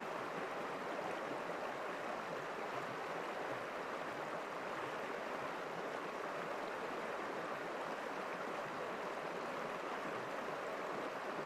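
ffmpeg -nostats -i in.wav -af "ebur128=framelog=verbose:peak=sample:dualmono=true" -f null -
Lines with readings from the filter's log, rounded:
Integrated loudness:
  I:         -40.1 LUFS
  Threshold: -50.1 LUFS
Loudness range:
  LRA:         0.3 LU
  Threshold: -60.1 LUFS
  LRA low:   -40.3 LUFS
  LRA high:  -40.0 LUFS
Sample peak:
  Peak:      -28.8 dBFS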